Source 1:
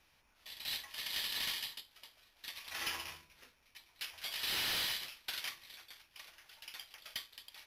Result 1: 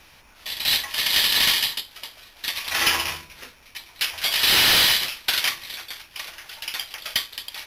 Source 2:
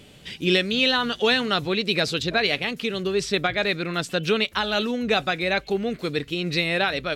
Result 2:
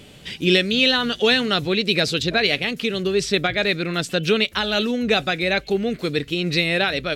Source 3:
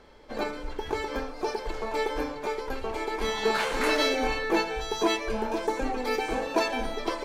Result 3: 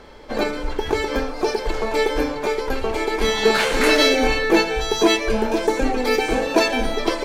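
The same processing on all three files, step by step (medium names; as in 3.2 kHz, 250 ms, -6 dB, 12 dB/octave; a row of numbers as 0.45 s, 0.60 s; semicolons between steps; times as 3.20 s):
dynamic bell 1 kHz, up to -6 dB, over -39 dBFS, Q 1.4; normalise loudness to -20 LUFS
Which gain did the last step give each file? +19.0 dB, +4.0 dB, +10.5 dB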